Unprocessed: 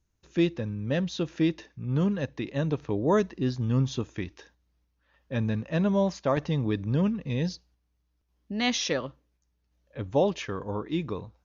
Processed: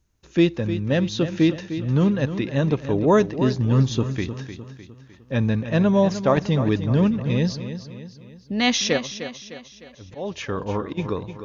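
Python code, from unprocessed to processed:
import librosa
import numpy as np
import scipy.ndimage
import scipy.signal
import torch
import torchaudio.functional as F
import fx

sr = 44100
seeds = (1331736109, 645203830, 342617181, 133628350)

y = fx.auto_swell(x, sr, attack_ms=392.0, at=(8.97, 10.97), fade=0.02)
y = fx.echo_feedback(y, sr, ms=304, feedback_pct=47, wet_db=-11.0)
y = y * librosa.db_to_amplitude(6.5)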